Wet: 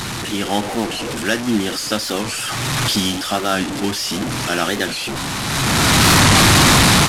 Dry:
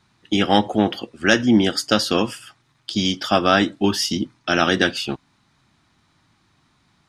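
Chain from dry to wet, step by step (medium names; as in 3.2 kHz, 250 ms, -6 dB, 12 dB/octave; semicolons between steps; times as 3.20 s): one-bit delta coder 64 kbps, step -15 dBFS; level rider gain up to 16.5 dB; warped record 45 rpm, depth 160 cents; trim -4.5 dB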